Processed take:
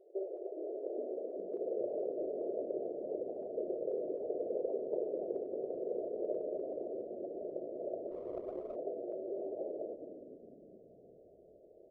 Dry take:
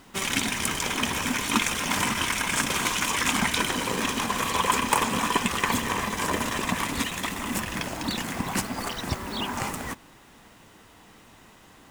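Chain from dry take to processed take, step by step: steep low-pass 650 Hz 96 dB/oct; 1.52–2.65 dynamic EQ 450 Hz, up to +6 dB, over -45 dBFS, Q 1.1; limiter -26 dBFS, peak gain reduction 13 dB; brick-wall FIR high-pass 340 Hz; frequency-shifting echo 0.411 s, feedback 45%, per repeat -66 Hz, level -11 dB; reverb RT60 0.80 s, pre-delay 0.179 s, DRR 11.5 dB; 8.11–8.76 running maximum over 5 samples; gain +2 dB

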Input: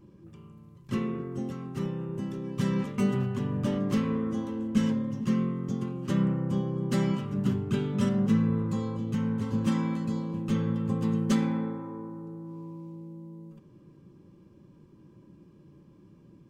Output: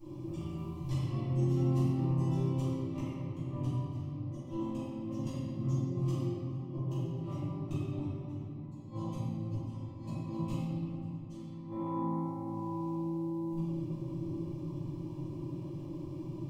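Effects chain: flipped gate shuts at -22 dBFS, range -35 dB; compressor, threshold -43 dBFS, peak gain reduction 15.5 dB; bell 240 Hz -6 dB 0.28 oct; fixed phaser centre 300 Hz, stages 8; shoebox room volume 120 m³, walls hard, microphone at 2.4 m

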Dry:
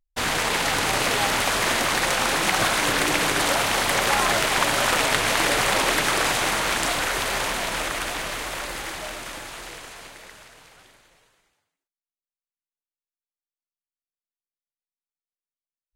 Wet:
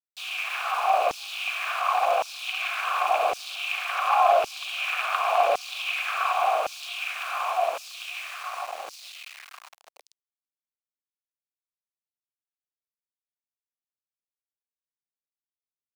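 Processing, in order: vowel filter a; sample gate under -43.5 dBFS; LFO high-pass saw down 0.9 Hz 490–5600 Hz; gain +6 dB

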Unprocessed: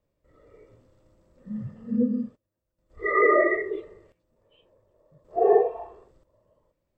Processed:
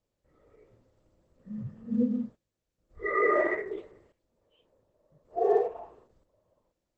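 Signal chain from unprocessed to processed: 1.58–3.17 low shelf 380 Hz +3.5 dB; gain -5.5 dB; Opus 12 kbps 48000 Hz

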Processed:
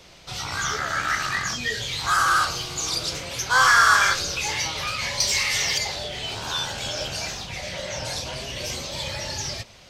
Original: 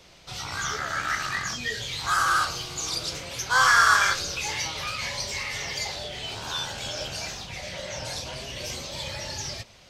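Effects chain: 5.2–5.78 high shelf 2400 Hz +9.5 dB; in parallel at -5.5 dB: soft clip -19.5 dBFS, distortion -10 dB

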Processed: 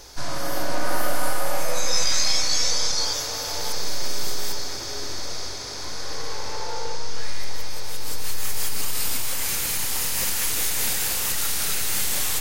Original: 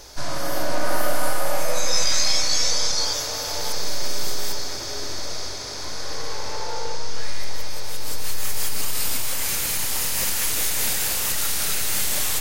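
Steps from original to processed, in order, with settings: notch 610 Hz, Q 13; gain -1 dB

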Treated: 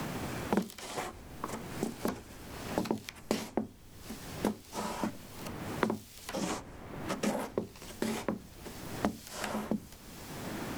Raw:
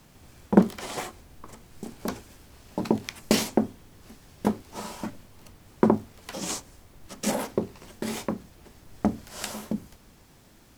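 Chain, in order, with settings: three-band squash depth 100%; gain -5 dB

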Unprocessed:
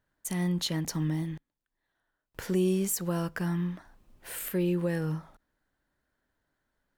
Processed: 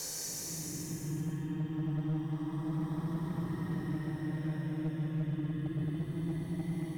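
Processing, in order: local time reversal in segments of 95 ms; Paulstretch 27×, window 0.10 s, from 0.91; hard clip -23.5 dBFS, distortion -20 dB; gain -5.5 dB

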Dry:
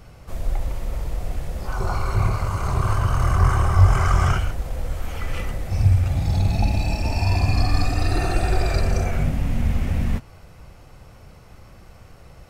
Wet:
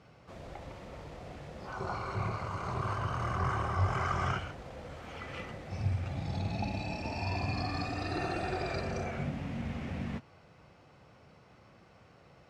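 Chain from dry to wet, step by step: BPF 140–4700 Hz; gain -8 dB

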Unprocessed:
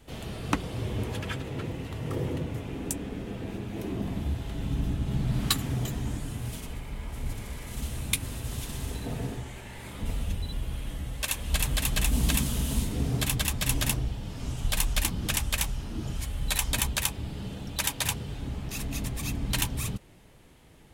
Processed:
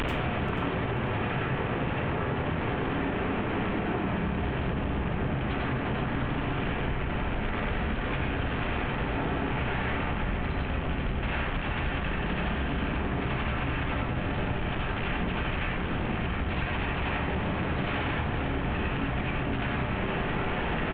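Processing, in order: delta modulation 16 kbps, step -17.5 dBFS; notches 50/100/150/200 Hz; feedback echo 0.485 s, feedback 31%, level -9 dB; plate-style reverb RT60 0.65 s, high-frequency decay 0.45×, pre-delay 80 ms, DRR -4.5 dB; compressor 4:1, threshold -25 dBFS, peak gain reduction 10.5 dB; gain -2.5 dB

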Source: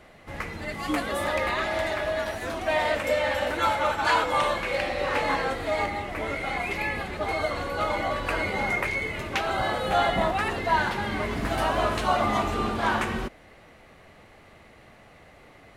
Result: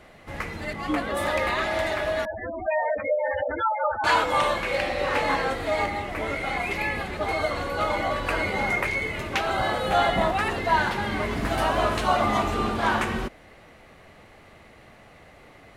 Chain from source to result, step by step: 0.73–1.17 high shelf 4600 Hz -12 dB; 2.25–4.04 spectral gate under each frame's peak -10 dB strong; gain +1.5 dB

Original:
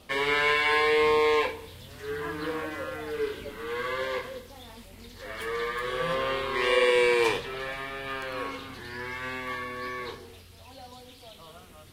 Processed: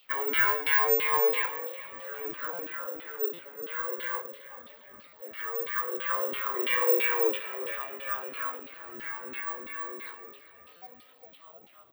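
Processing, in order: dynamic EQ 1400 Hz, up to +7 dB, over -44 dBFS, Q 2.4; LFO band-pass saw down 3 Hz 250–3300 Hz; on a send: frequency-shifting echo 0.403 s, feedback 51%, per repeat +39 Hz, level -14.5 dB; on the sum: careless resampling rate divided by 2×, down filtered, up zero stuff; stuck buffer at 2.53/3.33/5.07/10.76, samples 256, times 9

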